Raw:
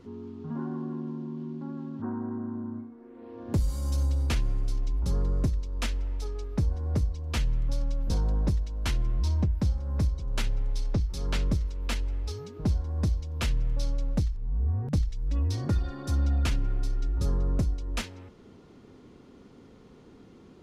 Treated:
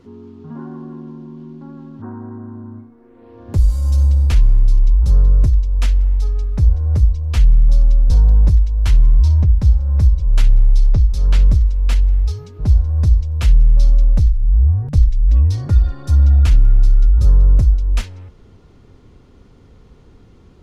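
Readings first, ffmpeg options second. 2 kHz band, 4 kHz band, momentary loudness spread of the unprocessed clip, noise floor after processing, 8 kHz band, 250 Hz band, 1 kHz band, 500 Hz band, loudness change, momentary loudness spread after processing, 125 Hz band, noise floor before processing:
+3.5 dB, +3.5 dB, 9 LU, −46 dBFS, +3.5 dB, +2.0 dB, +3.0 dB, +2.0 dB, +15.0 dB, 19 LU, +14.0 dB, −53 dBFS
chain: -af "asubboost=boost=5.5:cutoff=95,volume=3.5dB"

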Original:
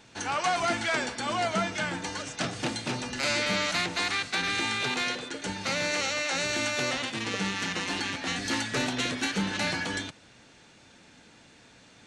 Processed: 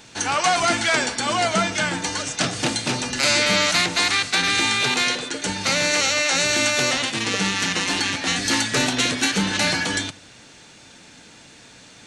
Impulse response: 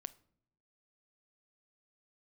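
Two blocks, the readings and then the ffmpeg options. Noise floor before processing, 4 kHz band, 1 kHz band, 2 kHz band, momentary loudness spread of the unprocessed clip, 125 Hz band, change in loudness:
−56 dBFS, +10.0 dB, +7.0 dB, +8.0 dB, 6 LU, +7.0 dB, +9.0 dB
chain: -filter_complex "[0:a]asplit=2[link_01][link_02];[1:a]atrim=start_sample=2205,highshelf=frequency=3400:gain=11[link_03];[link_02][link_03]afir=irnorm=-1:irlink=0,volume=5.5dB[link_04];[link_01][link_04]amix=inputs=2:normalize=0"

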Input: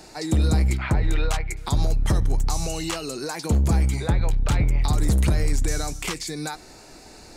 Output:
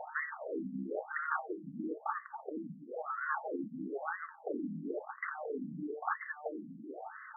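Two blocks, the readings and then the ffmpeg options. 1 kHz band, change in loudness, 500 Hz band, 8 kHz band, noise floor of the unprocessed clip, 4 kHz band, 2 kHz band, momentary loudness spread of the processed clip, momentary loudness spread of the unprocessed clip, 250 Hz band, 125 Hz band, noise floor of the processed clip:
−5.5 dB, −16.0 dB, −8.0 dB, below −40 dB, −46 dBFS, below −40 dB, −5.0 dB, 8 LU, 8 LU, −12.0 dB, −31.0 dB, −54 dBFS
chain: -filter_complex "[0:a]asuperstop=centerf=1000:order=8:qfactor=7.6,bandreject=frequency=112.6:width_type=h:width=4,bandreject=frequency=225.2:width_type=h:width=4,bandreject=frequency=337.8:width_type=h:width=4,bandreject=frequency=450.4:width_type=h:width=4,asplit=2[link_01][link_02];[link_02]aeval=exprs='clip(val(0),-1,0.0562)':channel_layout=same,volume=-6.5dB[link_03];[link_01][link_03]amix=inputs=2:normalize=0,alimiter=limit=-15.5dB:level=0:latency=1:release=182,afftfilt=real='re*lt(hypot(re,im),0.126)':imag='im*lt(hypot(re,im),0.126)':win_size=1024:overlap=0.75,afftfilt=real='re*between(b*sr/1024,200*pow(1500/200,0.5+0.5*sin(2*PI*1*pts/sr))/1.41,200*pow(1500/200,0.5+0.5*sin(2*PI*1*pts/sr))*1.41)':imag='im*between(b*sr/1024,200*pow(1500/200,0.5+0.5*sin(2*PI*1*pts/sr))/1.41,200*pow(1500/200,0.5+0.5*sin(2*PI*1*pts/sr))*1.41)':win_size=1024:overlap=0.75,volume=5.5dB"

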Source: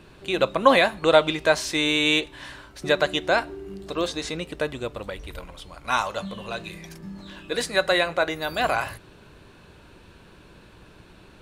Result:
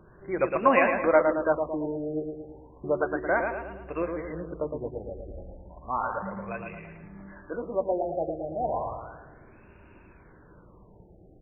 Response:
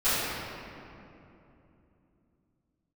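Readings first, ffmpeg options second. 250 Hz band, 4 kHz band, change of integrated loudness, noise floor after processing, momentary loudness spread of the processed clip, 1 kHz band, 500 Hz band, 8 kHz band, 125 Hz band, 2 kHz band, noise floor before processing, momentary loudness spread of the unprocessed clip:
−3.0 dB, below −30 dB, −5.0 dB, −54 dBFS, 22 LU, −3.0 dB, −3.0 dB, below −40 dB, −4.0 dB, −8.0 dB, −51 dBFS, 21 LU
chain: -filter_complex "[0:a]flanger=delay=1.8:depth=1.5:regen=-72:speed=0.46:shape=sinusoidal,asplit=2[link_01][link_02];[link_02]adelay=111,lowpass=frequency=2900:poles=1,volume=-5dB,asplit=2[link_03][link_04];[link_04]adelay=111,lowpass=frequency=2900:poles=1,volume=0.53,asplit=2[link_05][link_06];[link_06]adelay=111,lowpass=frequency=2900:poles=1,volume=0.53,asplit=2[link_07][link_08];[link_08]adelay=111,lowpass=frequency=2900:poles=1,volume=0.53,asplit=2[link_09][link_10];[link_10]adelay=111,lowpass=frequency=2900:poles=1,volume=0.53,asplit=2[link_11][link_12];[link_12]adelay=111,lowpass=frequency=2900:poles=1,volume=0.53,asplit=2[link_13][link_14];[link_14]adelay=111,lowpass=frequency=2900:poles=1,volume=0.53[link_15];[link_01][link_03][link_05][link_07][link_09][link_11][link_13][link_15]amix=inputs=8:normalize=0,afftfilt=real='re*lt(b*sr/1024,810*pow(2900/810,0.5+0.5*sin(2*PI*0.33*pts/sr)))':imag='im*lt(b*sr/1024,810*pow(2900/810,0.5+0.5*sin(2*PI*0.33*pts/sr)))':win_size=1024:overlap=0.75"

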